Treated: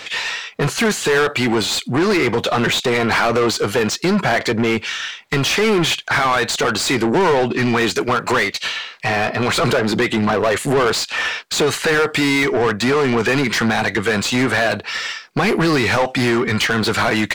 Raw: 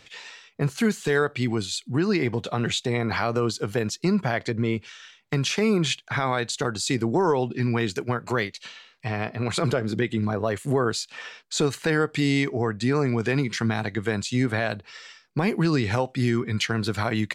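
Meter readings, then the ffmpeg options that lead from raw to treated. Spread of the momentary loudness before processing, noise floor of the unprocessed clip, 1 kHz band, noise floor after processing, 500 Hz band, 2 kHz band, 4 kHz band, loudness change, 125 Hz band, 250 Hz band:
8 LU, -57 dBFS, +10.5 dB, -37 dBFS, +8.5 dB, +11.5 dB, +11.0 dB, +8.0 dB, +2.0 dB, +6.0 dB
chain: -filter_complex "[0:a]highshelf=f=8400:g=6,asplit=2[s0][s1];[s1]highpass=f=720:p=1,volume=20,asoftclip=type=tanh:threshold=0.266[s2];[s0][s2]amix=inputs=2:normalize=0,lowpass=f=3100:p=1,volume=0.501,volume=1.41"

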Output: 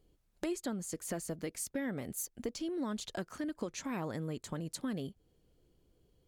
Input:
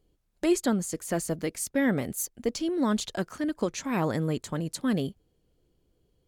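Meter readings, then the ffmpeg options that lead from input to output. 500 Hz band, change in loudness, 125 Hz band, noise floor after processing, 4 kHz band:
-10.5 dB, -10.0 dB, -10.0 dB, -74 dBFS, -8.5 dB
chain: -af "acompressor=threshold=0.0126:ratio=3"

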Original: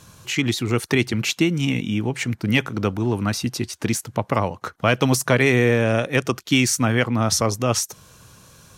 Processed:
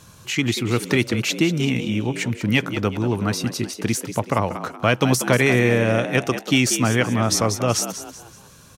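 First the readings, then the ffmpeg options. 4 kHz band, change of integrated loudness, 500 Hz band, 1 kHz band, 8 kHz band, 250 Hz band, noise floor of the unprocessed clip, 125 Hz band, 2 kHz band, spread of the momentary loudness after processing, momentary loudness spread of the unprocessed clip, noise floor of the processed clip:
+0.5 dB, +0.5 dB, +0.5 dB, +0.5 dB, +0.5 dB, +0.5 dB, -51 dBFS, 0.0 dB, +0.5 dB, 7 LU, 8 LU, -47 dBFS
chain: -filter_complex "[0:a]asplit=5[s0][s1][s2][s3][s4];[s1]adelay=188,afreqshift=73,volume=0.282[s5];[s2]adelay=376,afreqshift=146,volume=0.11[s6];[s3]adelay=564,afreqshift=219,volume=0.0427[s7];[s4]adelay=752,afreqshift=292,volume=0.0168[s8];[s0][s5][s6][s7][s8]amix=inputs=5:normalize=0"

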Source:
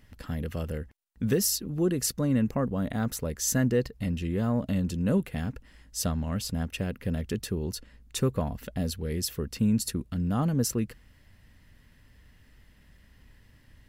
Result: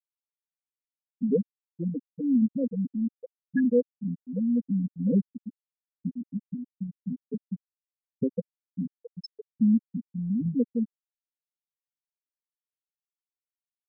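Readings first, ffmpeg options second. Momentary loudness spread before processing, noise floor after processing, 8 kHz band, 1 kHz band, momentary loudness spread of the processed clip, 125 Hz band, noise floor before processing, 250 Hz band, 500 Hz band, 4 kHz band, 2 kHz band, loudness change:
10 LU, under -85 dBFS, under -40 dB, under -35 dB, 16 LU, -6.5 dB, -58 dBFS, +2.0 dB, -1.0 dB, under -15 dB, no reading, 0.0 dB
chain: -af "aecho=1:1:4.2:0.67,afftfilt=real='re*gte(hypot(re,im),0.355)':imag='im*gte(hypot(re,im),0.355)':win_size=1024:overlap=0.75"

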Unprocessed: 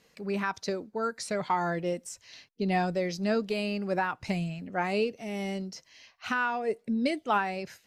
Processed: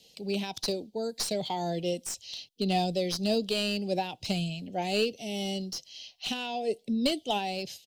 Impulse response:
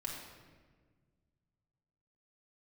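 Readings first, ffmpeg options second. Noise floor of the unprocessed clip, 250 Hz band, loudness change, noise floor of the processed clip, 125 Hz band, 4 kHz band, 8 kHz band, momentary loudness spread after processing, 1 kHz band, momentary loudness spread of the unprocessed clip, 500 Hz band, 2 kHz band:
-67 dBFS, 0.0 dB, -0.5 dB, -64 dBFS, 0.0 dB, +9.5 dB, +6.5 dB, 7 LU, -3.5 dB, 8 LU, 0.0 dB, -6.5 dB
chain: -filter_complex "[0:a]firequalizer=gain_entry='entry(780,0);entry(1200,-26);entry(3100,13);entry(6800,7)':delay=0.05:min_phase=1,acrossover=split=180|970|2600[s0][s1][s2][s3];[s3]aeval=exprs='clip(val(0),-1,0.0188)':c=same[s4];[s0][s1][s2][s4]amix=inputs=4:normalize=0"

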